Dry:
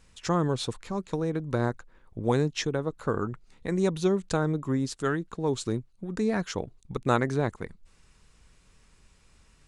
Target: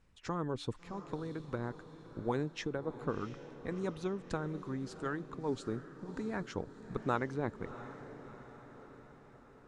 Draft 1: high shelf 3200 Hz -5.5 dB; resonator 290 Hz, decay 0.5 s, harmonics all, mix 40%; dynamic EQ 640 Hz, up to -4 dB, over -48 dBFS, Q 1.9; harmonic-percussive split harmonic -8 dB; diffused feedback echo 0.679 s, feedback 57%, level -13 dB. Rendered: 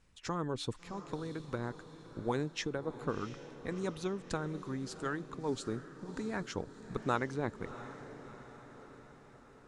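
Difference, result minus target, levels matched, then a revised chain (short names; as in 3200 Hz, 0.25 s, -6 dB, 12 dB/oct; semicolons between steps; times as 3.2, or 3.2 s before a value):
8000 Hz band +6.5 dB
high shelf 3200 Hz -14 dB; resonator 290 Hz, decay 0.5 s, harmonics all, mix 40%; dynamic EQ 640 Hz, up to -4 dB, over -48 dBFS, Q 1.9; harmonic-percussive split harmonic -8 dB; diffused feedback echo 0.679 s, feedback 57%, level -13 dB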